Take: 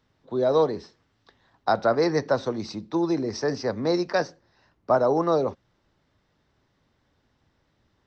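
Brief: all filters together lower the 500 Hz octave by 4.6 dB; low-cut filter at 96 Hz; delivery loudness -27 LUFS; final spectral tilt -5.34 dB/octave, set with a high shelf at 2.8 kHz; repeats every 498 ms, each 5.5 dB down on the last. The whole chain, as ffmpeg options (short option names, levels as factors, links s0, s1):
-af "highpass=96,equalizer=f=500:t=o:g=-5.5,highshelf=f=2800:g=-6.5,aecho=1:1:498|996|1494|1992|2490|2988|3486:0.531|0.281|0.149|0.079|0.0419|0.0222|0.0118,volume=1.19"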